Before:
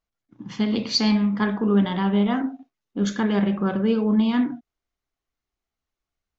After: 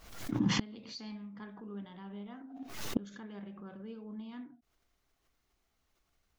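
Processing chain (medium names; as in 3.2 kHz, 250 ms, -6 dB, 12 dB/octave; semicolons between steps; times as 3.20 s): inverted gate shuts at -25 dBFS, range -33 dB; swell ahead of each attack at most 73 dB/s; trim +8 dB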